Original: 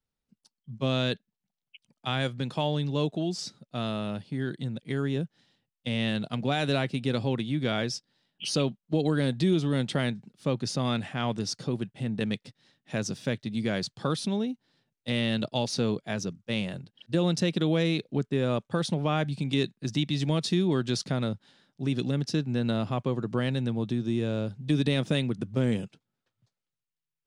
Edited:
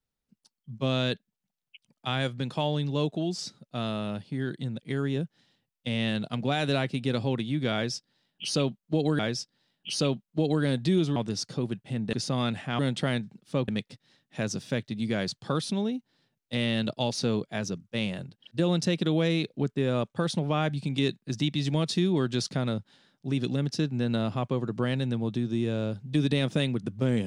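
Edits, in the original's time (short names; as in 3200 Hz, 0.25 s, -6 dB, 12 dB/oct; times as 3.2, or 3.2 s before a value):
7.74–9.19 loop, 2 plays
9.71–10.6 swap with 11.26–12.23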